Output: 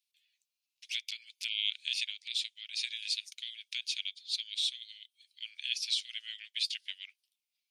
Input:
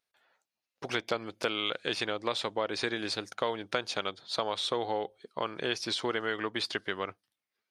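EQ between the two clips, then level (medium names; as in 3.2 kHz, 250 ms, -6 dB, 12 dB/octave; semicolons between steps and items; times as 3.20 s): steep high-pass 2.4 kHz 48 dB/octave; +2.0 dB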